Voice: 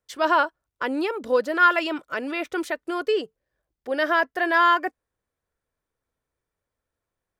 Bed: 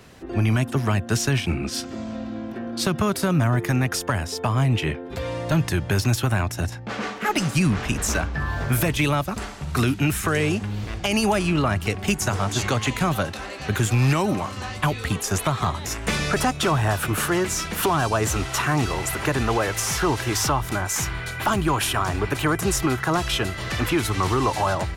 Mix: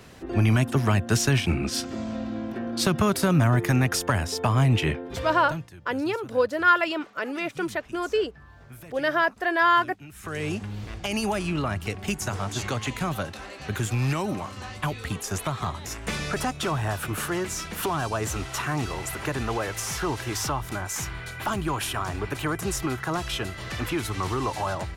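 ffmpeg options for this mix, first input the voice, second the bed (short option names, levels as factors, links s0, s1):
-filter_complex "[0:a]adelay=5050,volume=0.841[s0];[1:a]volume=7.5,afade=t=out:st=4.95:d=0.74:silence=0.0668344,afade=t=in:st=10.12:d=0.41:silence=0.133352[s1];[s0][s1]amix=inputs=2:normalize=0"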